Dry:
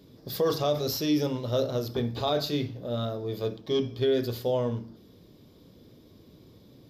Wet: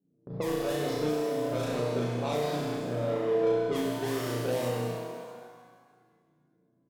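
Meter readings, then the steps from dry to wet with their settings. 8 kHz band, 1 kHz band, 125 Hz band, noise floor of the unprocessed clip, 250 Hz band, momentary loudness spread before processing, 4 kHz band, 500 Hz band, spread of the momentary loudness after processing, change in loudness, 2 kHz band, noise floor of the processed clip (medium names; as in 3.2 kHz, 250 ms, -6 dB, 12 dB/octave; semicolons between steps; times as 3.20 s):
0.0 dB, +0.5 dB, -2.5 dB, -55 dBFS, -2.0 dB, 6 LU, -7.0 dB, -0.5 dB, 10 LU, -1.5 dB, +4.0 dB, -71 dBFS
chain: high-pass 150 Hz 24 dB/octave; treble shelf 2.5 kHz -10 dB; in parallel at -4 dB: decimation with a swept rate 37×, swing 60% 2.1 Hz; on the sum: doubling 40 ms -4 dB; level-controlled noise filter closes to 350 Hz, open at -19 dBFS; treble shelf 7.7 kHz +6.5 dB; gate -42 dBFS, range -19 dB; on a send: flutter echo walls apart 5.7 m, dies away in 0.76 s; on the sum: compression, threshold -24 dBFS, peak gain reduction 15 dB; pitch-shifted reverb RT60 1.7 s, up +7 st, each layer -8 dB, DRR 1 dB; trim -5 dB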